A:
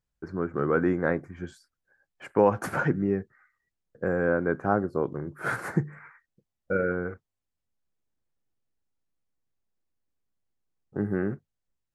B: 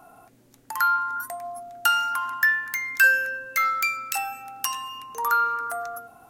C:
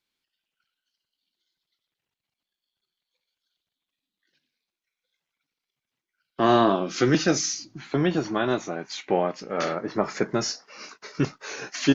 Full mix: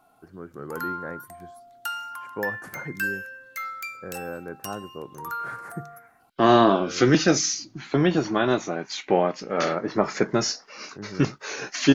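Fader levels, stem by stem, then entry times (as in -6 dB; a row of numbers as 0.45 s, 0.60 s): -10.5 dB, -10.5 dB, +2.5 dB; 0.00 s, 0.00 s, 0.00 s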